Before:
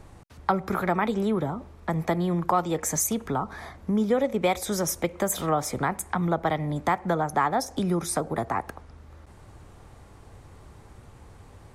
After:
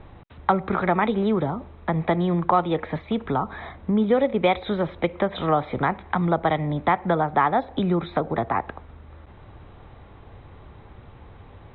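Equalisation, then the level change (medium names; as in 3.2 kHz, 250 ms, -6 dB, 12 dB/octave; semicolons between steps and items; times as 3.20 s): Chebyshev low-pass 3.9 kHz, order 8; +4.0 dB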